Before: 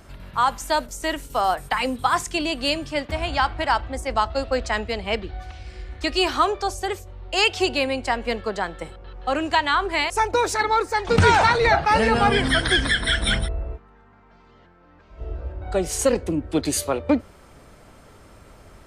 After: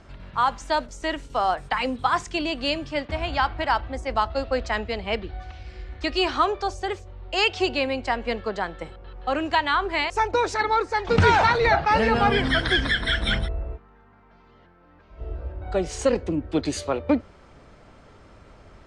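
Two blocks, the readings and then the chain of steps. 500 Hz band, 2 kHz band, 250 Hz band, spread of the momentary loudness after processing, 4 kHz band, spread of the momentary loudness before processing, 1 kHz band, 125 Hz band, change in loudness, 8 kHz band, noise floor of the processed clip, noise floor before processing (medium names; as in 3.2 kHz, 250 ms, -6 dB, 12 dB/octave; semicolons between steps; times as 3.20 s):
-1.5 dB, -2.0 dB, -1.5 dB, 14 LU, -3.0 dB, 14 LU, -1.5 dB, -1.5 dB, -2.0 dB, -9.5 dB, -54 dBFS, -52 dBFS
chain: Bessel low-pass 5 kHz, order 4; trim -1.5 dB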